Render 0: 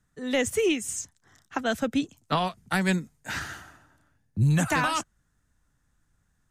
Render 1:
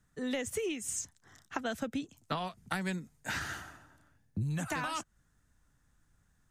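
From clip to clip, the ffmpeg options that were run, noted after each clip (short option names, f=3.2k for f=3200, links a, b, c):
-af "acompressor=threshold=-32dB:ratio=8"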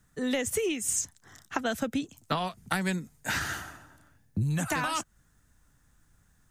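-af "highshelf=f=10k:g=7,volume=5.5dB"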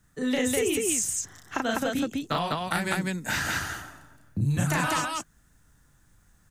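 -af "aecho=1:1:34.99|201.2:0.794|0.891"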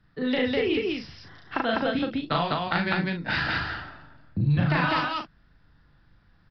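-filter_complex "[0:a]asplit=2[a][b];[b]adelay=41,volume=-7.5dB[c];[a][c]amix=inputs=2:normalize=0,aresample=11025,aresample=44100,volume=1.5dB"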